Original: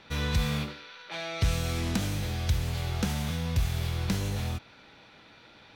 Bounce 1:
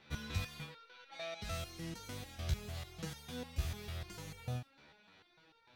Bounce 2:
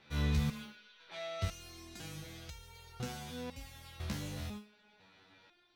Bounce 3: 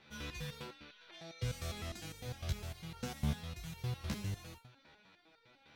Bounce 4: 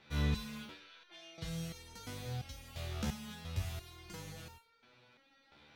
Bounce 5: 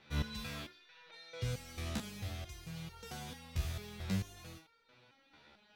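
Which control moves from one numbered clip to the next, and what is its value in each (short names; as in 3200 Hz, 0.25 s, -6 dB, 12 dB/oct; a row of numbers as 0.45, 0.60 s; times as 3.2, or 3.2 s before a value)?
stepped resonator, rate: 6.7, 2, 9.9, 2.9, 4.5 Hz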